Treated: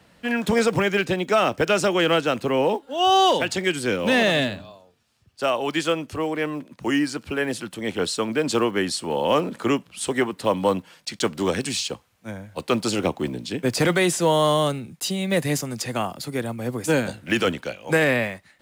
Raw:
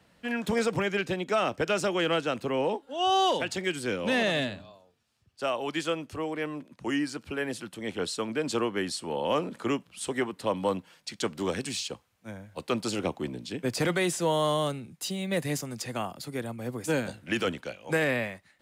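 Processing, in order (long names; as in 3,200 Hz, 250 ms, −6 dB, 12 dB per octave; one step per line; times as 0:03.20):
one scale factor per block 7 bits
level +7 dB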